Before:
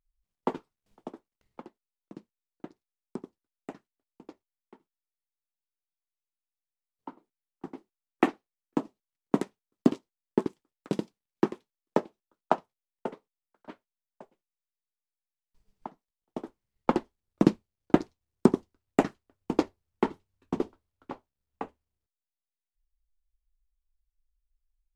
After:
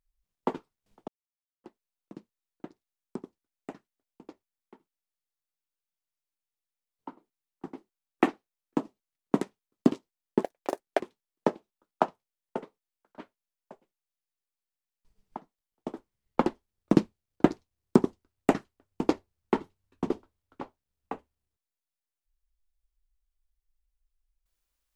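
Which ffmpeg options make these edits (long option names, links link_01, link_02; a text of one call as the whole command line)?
ffmpeg -i in.wav -filter_complex "[0:a]asplit=5[link_01][link_02][link_03][link_04][link_05];[link_01]atrim=end=1.08,asetpts=PTS-STARTPTS,afade=type=out:start_time=1.076:duration=0.004:curve=hsin[link_06];[link_02]atrim=start=1.08:end=1.64,asetpts=PTS-STARTPTS,volume=0[link_07];[link_03]atrim=start=1.64:end=10.434,asetpts=PTS-STARTPTS,afade=type=in:duration=0.004:curve=hsin[link_08];[link_04]atrim=start=10.43:end=11.5,asetpts=PTS-STARTPTS,asetrate=82467,aresample=44100[link_09];[link_05]atrim=start=11.496[link_10];[link_06][link_07][link_08]concat=n=3:v=0:a=1[link_11];[link_11][link_09]acrossfade=duration=0.004:curve1=hsin:curve2=hsin[link_12];[link_12][link_10]acrossfade=duration=0.004:curve1=hsin:curve2=hsin" out.wav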